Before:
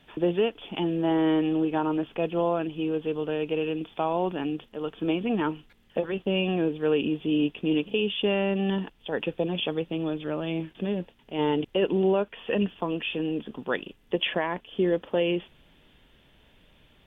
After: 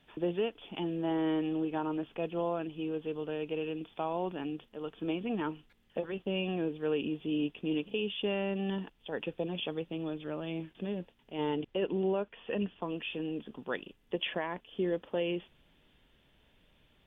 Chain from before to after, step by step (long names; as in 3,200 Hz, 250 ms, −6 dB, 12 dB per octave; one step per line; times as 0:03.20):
0:11.55–0:12.83: high-frequency loss of the air 99 metres
level −7.5 dB